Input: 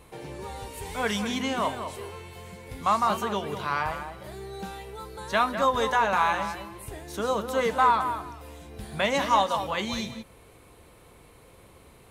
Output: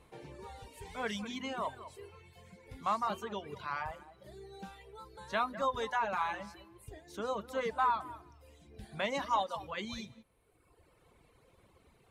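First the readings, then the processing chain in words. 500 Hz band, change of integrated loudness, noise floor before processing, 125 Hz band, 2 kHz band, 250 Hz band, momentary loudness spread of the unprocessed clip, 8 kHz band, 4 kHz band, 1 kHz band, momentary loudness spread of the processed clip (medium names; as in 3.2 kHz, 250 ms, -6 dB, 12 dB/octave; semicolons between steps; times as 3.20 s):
-10.0 dB, -9.0 dB, -54 dBFS, -11.5 dB, -10.0 dB, -11.0 dB, 18 LU, -13.5 dB, -11.0 dB, -9.5 dB, 19 LU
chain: reverb removal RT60 1.5 s; treble shelf 9.8 kHz -11 dB; trim -8.5 dB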